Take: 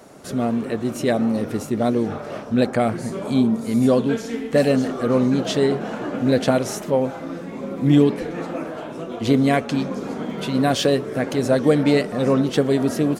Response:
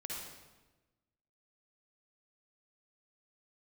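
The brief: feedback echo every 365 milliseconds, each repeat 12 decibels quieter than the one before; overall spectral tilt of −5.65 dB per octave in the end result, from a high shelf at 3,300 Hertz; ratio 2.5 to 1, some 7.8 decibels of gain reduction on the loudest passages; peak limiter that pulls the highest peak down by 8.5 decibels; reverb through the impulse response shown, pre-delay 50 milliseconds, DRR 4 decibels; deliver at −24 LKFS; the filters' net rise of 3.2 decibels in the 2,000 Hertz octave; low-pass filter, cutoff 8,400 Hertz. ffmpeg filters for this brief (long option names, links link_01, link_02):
-filter_complex "[0:a]lowpass=8400,equalizer=frequency=2000:width_type=o:gain=6,highshelf=frequency=3300:gain=-7,acompressor=threshold=-23dB:ratio=2.5,alimiter=limit=-19dB:level=0:latency=1,aecho=1:1:365|730|1095:0.251|0.0628|0.0157,asplit=2[link_01][link_02];[1:a]atrim=start_sample=2205,adelay=50[link_03];[link_02][link_03]afir=irnorm=-1:irlink=0,volume=-3.5dB[link_04];[link_01][link_04]amix=inputs=2:normalize=0,volume=3dB"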